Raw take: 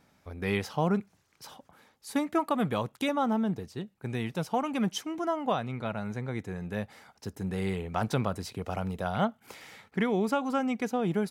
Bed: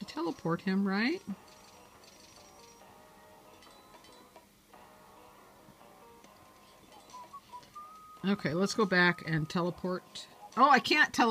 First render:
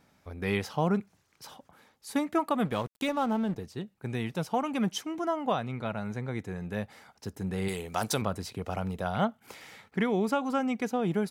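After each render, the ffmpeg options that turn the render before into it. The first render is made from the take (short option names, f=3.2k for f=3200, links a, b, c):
-filter_complex "[0:a]asettb=1/sr,asplit=3[a][b][c];[a]atrim=end=2.654[d];[b]atrim=start=2.65:end=3.56,asetpts=PTS-STARTPTS,afade=t=in:d=0.004:c=qsin,afade=t=out:st=0.906:d=0.004:c=qsin,aeval=exprs='sgn(val(0))*max(abs(val(0))-0.00596,0)':c=same[e];[c]atrim=start=3.556[f];[d][e]acrossfade=d=0.004:c1=hsin:c2=qsin[g];[g][f]acrossfade=d=0.004:c1=qsin:c2=hsin,asettb=1/sr,asplit=3[h][i][j];[h]atrim=end=7.684[k];[i]atrim=start=7.68:end=8.22,asetpts=PTS-STARTPTS,afade=t=in:d=0.004:c=qsin,afade=t=out:st=0.536:d=0.004:c=qsin,bass=f=250:g=-6,treble=f=4k:g=14[l];[j]atrim=start=8.216[m];[k][l]acrossfade=d=0.004:c1=hsin:c2=qsin[n];[n][m]acrossfade=d=0.004:c1=qsin:c2=hsin"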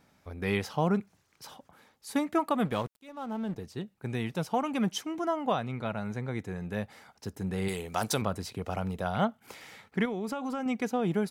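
-filter_complex "[0:a]asettb=1/sr,asplit=3[a][b][c];[a]atrim=end=10.054[d];[b]atrim=start=10.05:end=10.66,asetpts=PTS-STARTPTS,afade=t=in:d=0.004:c=qsin,afade=t=out:st=0.606:d=0.004:c=qsin,acompressor=threshold=-30dB:ratio=5:attack=3.2:release=140:knee=1:detection=peak[e];[c]atrim=start=10.656[f];[d][e]acrossfade=d=0.004:c1=hsin:c2=qsin[g];[g][f]acrossfade=d=0.004:c1=qsin:c2=hsin,asplit=2[h][i];[h]atrim=end=2.99,asetpts=PTS-STARTPTS,afade=t=out:st=2.986:d=0.004:c=hsin[j];[i]atrim=start=2.99,asetpts=PTS-STARTPTS,afade=t=in:d=0.73[k];[j][k]concat=n=2:v=0:a=1"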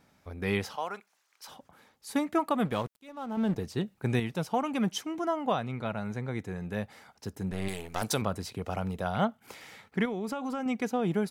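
-filter_complex "[0:a]asettb=1/sr,asplit=3[a][b][c];[a]atrim=end=0.764[d];[b]atrim=start=0.76:end=1.48,asetpts=PTS-STARTPTS,afade=t=in:d=0.004:c=qsin,afade=t=out:st=0.716:d=0.004:c=qsin,highpass=830[e];[c]atrim=start=1.476[f];[d][e]acrossfade=d=0.004:c1=hsin:c2=qsin[g];[g][f]acrossfade=d=0.004:c1=qsin:c2=hsin,asettb=1/sr,asplit=3[h][i][j];[h]atrim=end=3.374[k];[i]atrim=start=3.37:end=4.2,asetpts=PTS-STARTPTS,afade=t=in:d=0.004:c=qsin,afade=t=out:st=0.826:d=0.004:c=qsin,acontrast=51[l];[j]atrim=start=4.196[m];[k][l]acrossfade=d=0.004:c1=hsin:c2=qsin[n];[n][m]acrossfade=d=0.004:c1=qsin:c2=hsin,asettb=1/sr,asplit=3[o][p][q];[o]atrim=end=7.514[r];[p]atrim=start=7.51:end=8.02,asetpts=PTS-STARTPTS,afade=t=in:d=0.004:c=qsin,afade=t=out:st=0.506:d=0.004:c=qsin,aeval=exprs='if(lt(val(0),0),0.251*val(0),val(0))':c=same[s];[q]atrim=start=8.016[t];[r][s]acrossfade=d=0.004:c1=hsin:c2=qsin[u];[u][t]acrossfade=d=0.004:c1=qsin:c2=hsin"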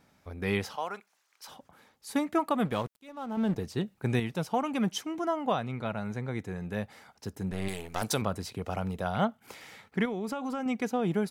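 -af anull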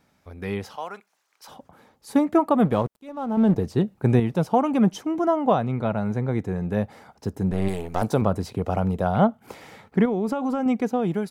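-filter_complex "[0:a]acrossover=split=1100[a][b];[a]dynaudnorm=f=970:g=3:m=10dB[c];[b]alimiter=level_in=3.5dB:limit=-24dB:level=0:latency=1:release=195,volume=-3.5dB[d];[c][d]amix=inputs=2:normalize=0"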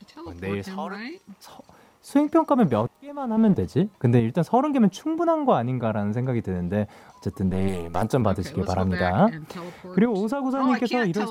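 -filter_complex "[1:a]volume=-5dB[a];[0:a][a]amix=inputs=2:normalize=0"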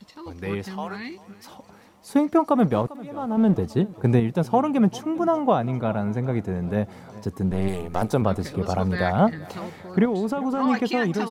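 -af "aecho=1:1:397|794|1191|1588:0.1|0.055|0.0303|0.0166"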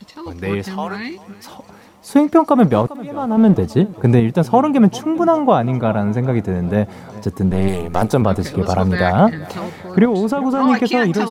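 -af "volume=7.5dB,alimiter=limit=-1dB:level=0:latency=1"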